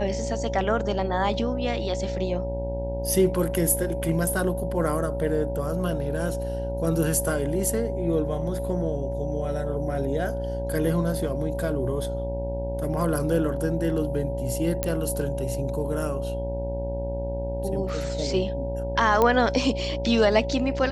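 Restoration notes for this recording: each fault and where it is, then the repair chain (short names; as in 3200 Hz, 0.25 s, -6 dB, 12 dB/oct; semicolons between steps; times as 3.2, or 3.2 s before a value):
buzz 60 Hz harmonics 16 -31 dBFS
tone 560 Hz -30 dBFS
14.83 pop -9 dBFS
19.22 pop -9 dBFS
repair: de-click; de-hum 60 Hz, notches 16; notch 560 Hz, Q 30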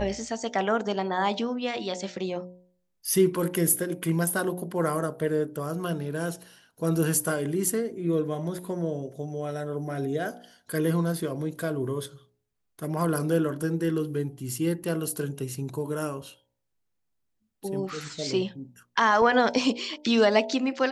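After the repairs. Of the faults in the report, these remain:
none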